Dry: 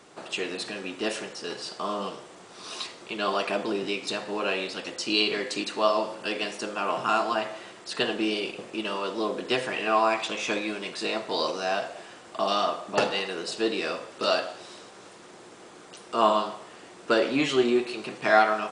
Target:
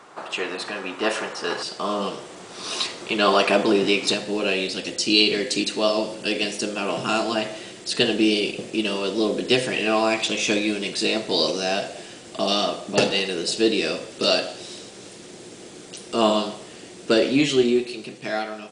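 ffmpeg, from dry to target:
-af "asetnsamples=n=441:p=0,asendcmd='1.63 equalizer g -3;4.14 equalizer g -14.5',equalizer=f=1.1k:w=0.79:g=10.5,dynaudnorm=f=270:g=11:m=11.5dB"

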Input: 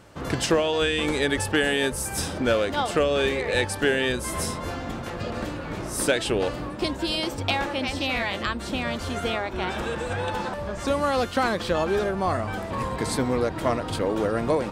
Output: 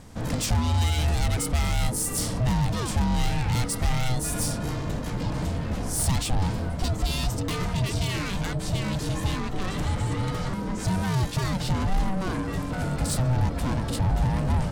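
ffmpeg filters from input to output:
-af "asoftclip=type=tanh:threshold=-26.5dB,aeval=exprs='val(0)*sin(2*PI*380*n/s)':c=same,bass=f=250:g=15,treble=f=4k:g=9"

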